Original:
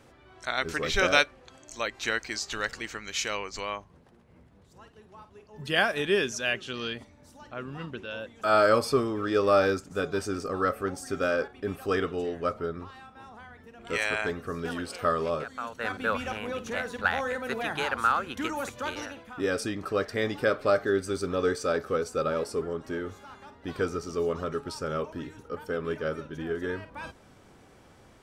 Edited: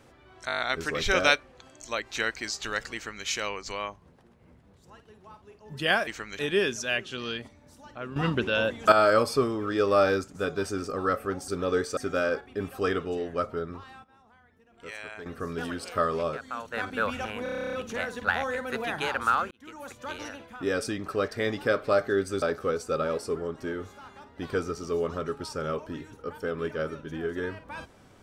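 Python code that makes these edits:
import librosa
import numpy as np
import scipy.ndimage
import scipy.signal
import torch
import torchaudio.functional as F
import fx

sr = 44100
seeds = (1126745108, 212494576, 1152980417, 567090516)

y = fx.edit(x, sr, fx.stutter(start_s=0.47, slice_s=0.02, count=7),
    fx.duplicate(start_s=2.82, length_s=0.32, to_s=5.95),
    fx.clip_gain(start_s=7.72, length_s=0.76, db=11.5),
    fx.clip_gain(start_s=13.11, length_s=1.22, db=-12.0),
    fx.stutter(start_s=16.5, slice_s=0.03, count=11),
    fx.fade_in_span(start_s=18.28, length_s=0.9),
    fx.move(start_s=21.19, length_s=0.49, to_s=11.04), tone=tone)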